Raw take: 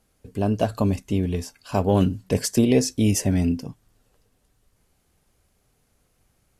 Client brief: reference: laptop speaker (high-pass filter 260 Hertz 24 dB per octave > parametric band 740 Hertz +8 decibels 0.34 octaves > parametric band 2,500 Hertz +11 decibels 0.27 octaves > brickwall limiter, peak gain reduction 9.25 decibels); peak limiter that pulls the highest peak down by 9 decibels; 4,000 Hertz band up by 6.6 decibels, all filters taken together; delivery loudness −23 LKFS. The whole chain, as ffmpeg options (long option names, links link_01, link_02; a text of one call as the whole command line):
ffmpeg -i in.wav -af "equalizer=frequency=4000:width_type=o:gain=8,alimiter=limit=-15.5dB:level=0:latency=1,highpass=frequency=260:width=0.5412,highpass=frequency=260:width=1.3066,equalizer=frequency=740:width_type=o:width=0.34:gain=8,equalizer=frequency=2500:width_type=o:width=0.27:gain=11,volume=8.5dB,alimiter=limit=-12.5dB:level=0:latency=1" out.wav